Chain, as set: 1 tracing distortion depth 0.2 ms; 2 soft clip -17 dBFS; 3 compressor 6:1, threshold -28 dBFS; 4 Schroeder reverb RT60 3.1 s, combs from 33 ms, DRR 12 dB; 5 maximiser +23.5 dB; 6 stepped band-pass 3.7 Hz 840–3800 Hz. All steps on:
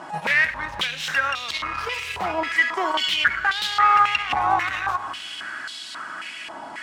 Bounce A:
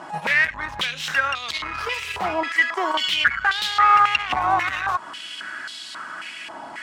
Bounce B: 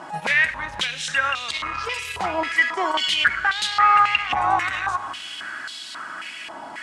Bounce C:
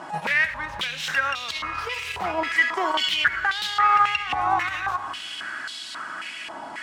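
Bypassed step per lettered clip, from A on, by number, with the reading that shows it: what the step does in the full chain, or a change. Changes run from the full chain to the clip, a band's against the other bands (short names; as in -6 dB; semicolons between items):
4, momentary loudness spread change +2 LU; 1, 8 kHz band +3.0 dB; 2, distortion -12 dB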